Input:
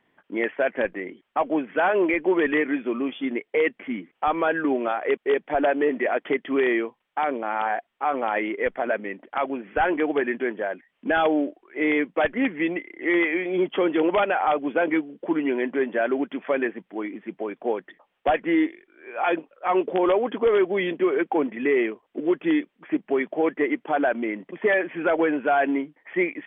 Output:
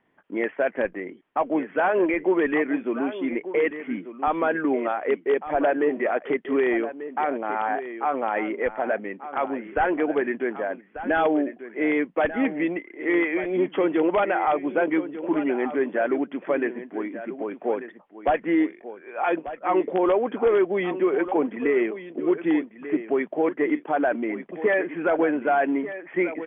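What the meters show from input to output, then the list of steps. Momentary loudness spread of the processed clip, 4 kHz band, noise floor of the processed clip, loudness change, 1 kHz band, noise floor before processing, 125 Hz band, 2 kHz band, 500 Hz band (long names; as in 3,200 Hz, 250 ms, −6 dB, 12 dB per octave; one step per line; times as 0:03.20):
7 LU, can't be measured, −51 dBFS, −0.5 dB, −0.5 dB, −74 dBFS, +0.5 dB, −2.0 dB, 0.0 dB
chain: Bessel low-pass filter 2,100 Hz, order 2
on a send: single-tap delay 1,190 ms −12.5 dB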